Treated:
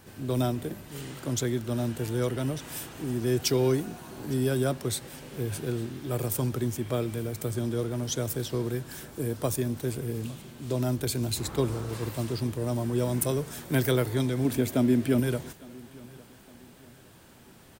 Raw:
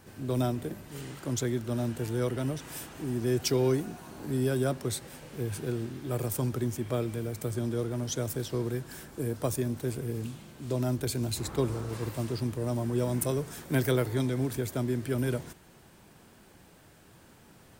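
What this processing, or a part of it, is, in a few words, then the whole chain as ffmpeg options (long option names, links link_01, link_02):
presence and air boost: -filter_complex "[0:a]asettb=1/sr,asplit=3[link_01][link_02][link_03];[link_01]atrim=end=14.454[link_04];[link_02]atrim=start=14.45:end=15.2,asetpts=PTS-STARTPTS,afade=type=in:duration=0.004:curve=qsin,afade=type=out:start_time=0.746:duration=0.004:curve=qsin,equalizer=frequency=250:width_type=o:width=0.67:gain=9,equalizer=frequency=630:width_type=o:width=0.67:gain=5,equalizer=frequency=2500:width_type=o:width=0.67:gain=4[link_05];[link_03]atrim=start=15.196[link_06];[link_04][link_05]acrossfade=duration=0.004:curve1=hsin:curve2=qsin[link_07];[link_07][link_06]acrossfade=duration=0.004:curve1=qsin:curve2=hsin,equalizer=frequency=3400:width_type=o:width=0.77:gain=2.5,highshelf=frequency=11000:gain=4,aecho=1:1:858|1716|2574:0.0708|0.029|0.0119,volume=1.5dB"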